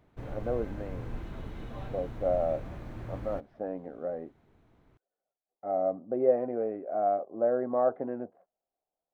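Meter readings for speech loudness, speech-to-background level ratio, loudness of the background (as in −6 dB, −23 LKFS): −31.5 LKFS, 11.0 dB, −42.5 LKFS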